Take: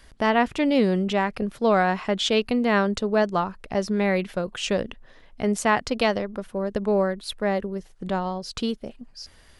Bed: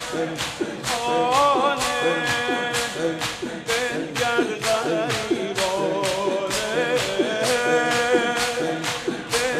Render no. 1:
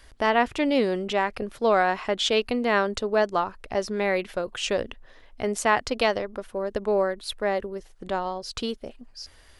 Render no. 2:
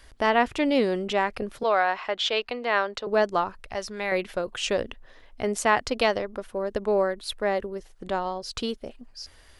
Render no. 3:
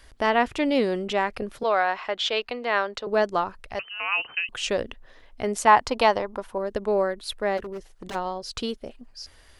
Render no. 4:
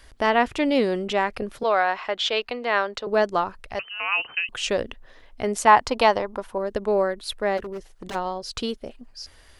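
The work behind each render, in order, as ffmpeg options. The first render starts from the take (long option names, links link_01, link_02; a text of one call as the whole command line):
ffmpeg -i in.wav -af "equalizer=frequency=180:width_type=o:width=0.72:gain=-10.5" out.wav
ffmpeg -i in.wav -filter_complex "[0:a]asettb=1/sr,asplit=3[link_01][link_02][link_03];[link_01]atrim=end=1.634[link_04];[link_02]atrim=start=1.63:end=3.07,asetpts=PTS-STARTPTS,afade=type=in:duration=0.004:curve=qsin,afade=type=out:start_time=1.436:duration=0.004:curve=qsin,acrossover=split=470 5700:gain=0.2 1 0.126[link_05][link_06][link_07];[link_05][link_06][link_07]amix=inputs=3:normalize=0[link_08];[link_03]atrim=start=3.066[link_09];[link_04][link_08]acrossfade=duration=0.004:curve1=hsin:curve2=qsin[link_10];[link_10][link_09]acrossfade=duration=0.004:curve1=qsin:curve2=hsin,asettb=1/sr,asplit=3[link_11][link_12][link_13];[link_11]atrim=end=3.594[link_14];[link_12]atrim=start=3.59:end=4.12,asetpts=PTS-STARTPTS,afade=type=in:duration=0.004:curve=qsin,afade=type=out:start_time=0.526:duration=0.004:curve=qsin,equalizer=frequency=300:width=0.58:gain=-10[link_15];[link_13]atrim=start=4.116[link_16];[link_14][link_15]acrossfade=duration=0.004:curve1=hsin:curve2=qsin[link_17];[link_17][link_16]acrossfade=duration=0.004:curve1=qsin:curve2=hsin" out.wav
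ffmpeg -i in.wav -filter_complex "[0:a]asettb=1/sr,asplit=3[link_01][link_02][link_03];[link_01]atrim=end=3.794[link_04];[link_02]atrim=start=3.79:end=4.49,asetpts=PTS-STARTPTS,afade=type=in:duration=0.004:curve=qsin,afade=type=out:start_time=0.696:duration=0.004:curve=qsin,lowpass=frequency=2600:width_type=q:width=0.5098,lowpass=frequency=2600:width_type=q:width=0.6013,lowpass=frequency=2600:width_type=q:width=0.9,lowpass=frequency=2600:width_type=q:width=2.563,afreqshift=-3100[link_05];[link_03]atrim=start=4.486[link_06];[link_04][link_05]acrossfade=duration=0.004:curve1=hsin:curve2=qsin[link_07];[link_07][link_06]acrossfade=duration=0.004:curve1=qsin:curve2=hsin,asettb=1/sr,asplit=3[link_08][link_09][link_10];[link_08]atrim=end=5.674[link_11];[link_09]atrim=start=5.67:end=6.58,asetpts=PTS-STARTPTS,afade=type=in:duration=0.004:curve=qsin,afade=type=out:start_time=0.906:duration=0.004:curve=qsin,equalizer=frequency=930:width=2.7:gain=11[link_12];[link_10]atrim=start=6.576[link_13];[link_11][link_12]acrossfade=duration=0.004:curve1=hsin:curve2=qsin[link_14];[link_14][link_13]acrossfade=duration=0.004:curve1=qsin:curve2=hsin,asplit=3[link_15][link_16][link_17];[link_15]afade=type=out:start_time=7.57:duration=0.02[link_18];[link_16]aeval=exprs='0.0355*(abs(mod(val(0)/0.0355+3,4)-2)-1)':channel_layout=same,afade=type=in:start_time=7.57:duration=0.02,afade=type=out:start_time=8.14:duration=0.02[link_19];[link_17]afade=type=in:start_time=8.14:duration=0.02[link_20];[link_18][link_19][link_20]amix=inputs=3:normalize=0" out.wav
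ffmpeg -i in.wav -af "volume=1.5dB" out.wav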